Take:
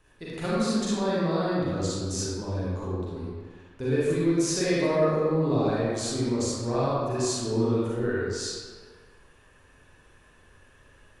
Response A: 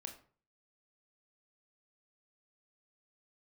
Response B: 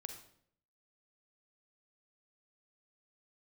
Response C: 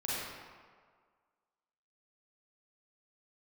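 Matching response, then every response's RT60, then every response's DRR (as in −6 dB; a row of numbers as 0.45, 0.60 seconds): C; 0.45, 0.65, 1.8 seconds; 4.0, 5.5, −8.5 decibels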